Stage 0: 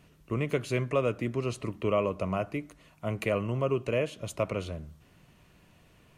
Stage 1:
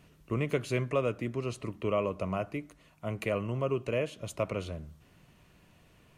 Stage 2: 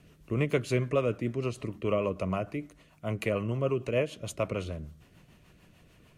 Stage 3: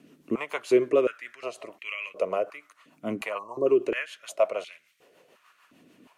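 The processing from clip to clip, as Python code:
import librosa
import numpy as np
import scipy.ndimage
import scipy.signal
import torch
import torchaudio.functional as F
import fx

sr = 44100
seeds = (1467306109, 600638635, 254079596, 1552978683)

y1 = fx.rider(x, sr, range_db=10, speed_s=2.0)
y1 = F.gain(torch.from_numpy(y1), -2.5).numpy()
y2 = fx.rotary(y1, sr, hz=6.7)
y2 = F.gain(torch.from_numpy(y2), 4.0).numpy()
y3 = fx.spec_box(y2, sr, start_s=3.38, length_s=0.28, low_hz=1200.0, high_hz=3600.0, gain_db=-28)
y3 = fx.filter_held_highpass(y3, sr, hz=2.8, low_hz=260.0, high_hz=2200.0)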